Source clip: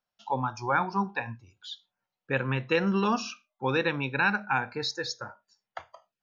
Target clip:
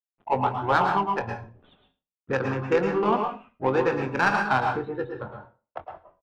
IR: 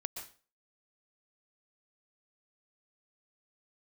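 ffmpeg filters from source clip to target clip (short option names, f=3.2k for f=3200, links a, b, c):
-filter_complex "[0:a]acrossover=split=350|3000[a][b][c];[a]acompressor=threshold=-43dB:ratio=3[d];[d][b][c]amix=inputs=3:normalize=0,aresample=8000,aeval=exprs='val(0)*gte(abs(val(0)),0.00355)':c=same,aresample=44100,adynamicsmooth=sensitivity=0.5:basefreq=690,asplit=2[e][f];[f]asoftclip=type=tanh:threshold=-32dB,volume=-9.5dB[g];[e][g]amix=inputs=2:normalize=0,asplit=2[h][i];[i]asetrate=35002,aresample=44100,atempo=1.25992,volume=-11dB[j];[h][j]amix=inputs=2:normalize=0,asplit=2[k][l];[l]adelay=23,volume=-11dB[m];[k][m]amix=inputs=2:normalize=0[n];[1:a]atrim=start_sample=2205,asetrate=48510,aresample=44100[o];[n][o]afir=irnorm=-1:irlink=0,volume=8.5dB"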